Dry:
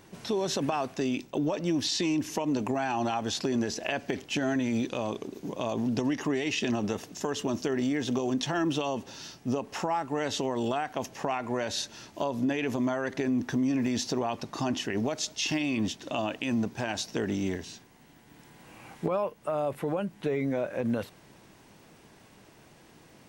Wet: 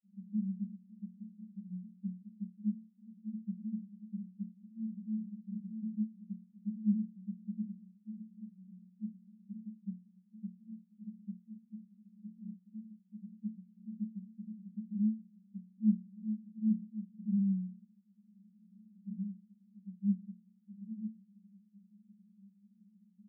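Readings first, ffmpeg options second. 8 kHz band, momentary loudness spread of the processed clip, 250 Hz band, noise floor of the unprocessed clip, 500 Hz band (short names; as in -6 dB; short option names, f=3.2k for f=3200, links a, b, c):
under -40 dB, 18 LU, -7.0 dB, -56 dBFS, under -40 dB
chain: -af "asuperpass=centerf=200:order=20:qfactor=4.9,volume=4.5dB"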